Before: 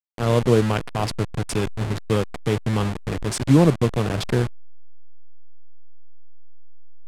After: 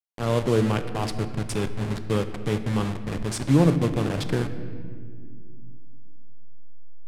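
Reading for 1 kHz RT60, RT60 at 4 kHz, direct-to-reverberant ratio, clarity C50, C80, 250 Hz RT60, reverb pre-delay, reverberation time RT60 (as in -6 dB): 1.5 s, 1.3 s, 9.0 dB, 11.0 dB, 12.0 dB, 3.7 s, 4 ms, 2.0 s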